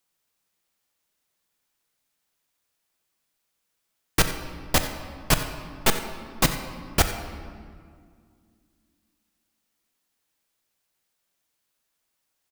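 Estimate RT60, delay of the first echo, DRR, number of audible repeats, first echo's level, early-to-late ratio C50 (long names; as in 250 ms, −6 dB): 2.1 s, 90 ms, 6.5 dB, 1, −15.0 dB, 8.0 dB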